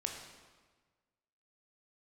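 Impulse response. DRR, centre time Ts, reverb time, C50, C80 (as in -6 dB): 1.5 dB, 44 ms, 1.4 s, 4.5 dB, 6.0 dB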